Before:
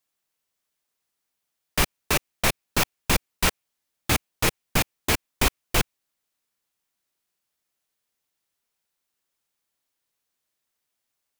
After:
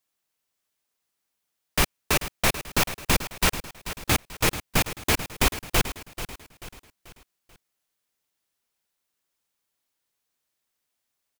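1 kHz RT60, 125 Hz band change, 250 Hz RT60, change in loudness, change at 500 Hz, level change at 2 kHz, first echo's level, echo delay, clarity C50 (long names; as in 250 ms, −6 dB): no reverb audible, +0.5 dB, no reverb audible, 0.0 dB, +0.5 dB, +0.5 dB, −12.5 dB, 437 ms, no reverb audible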